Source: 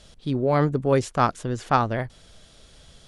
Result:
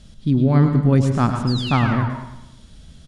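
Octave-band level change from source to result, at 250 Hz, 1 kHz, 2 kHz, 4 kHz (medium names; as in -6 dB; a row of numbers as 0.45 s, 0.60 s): +8.5 dB, -1.5 dB, +3.0 dB, +9.0 dB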